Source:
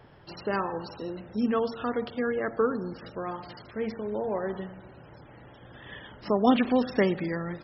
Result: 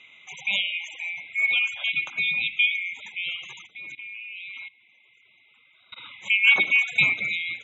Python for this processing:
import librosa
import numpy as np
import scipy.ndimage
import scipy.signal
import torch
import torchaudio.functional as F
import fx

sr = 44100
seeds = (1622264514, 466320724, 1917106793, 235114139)

y = fx.band_swap(x, sr, width_hz=2000)
y = scipy.signal.sosfilt(scipy.signal.cheby1(2, 1.0, [120.0, 5000.0], 'bandpass', fs=sr, output='sos'), y)
y = fx.hum_notches(y, sr, base_hz=60, count=6)
y = fx.level_steps(y, sr, step_db=21, at=(3.66, 5.96), fade=0.02)
y = F.gain(torch.from_numpy(y), 3.5).numpy()